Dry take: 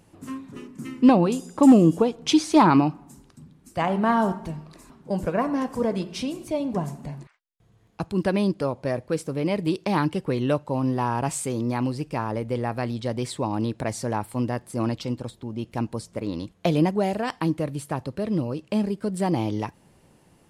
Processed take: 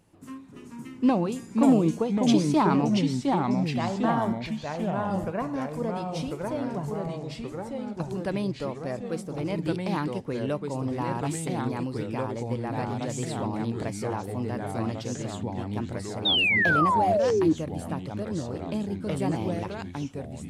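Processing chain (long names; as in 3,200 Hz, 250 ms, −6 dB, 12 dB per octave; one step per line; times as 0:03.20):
delay with pitch and tempo change per echo 401 ms, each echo −2 semitones, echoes 3
sound drawn into the spectrogram fall, 0:16.25–0:17.53, 300–3,800 Hz −16 dBFS
level −6.5 dB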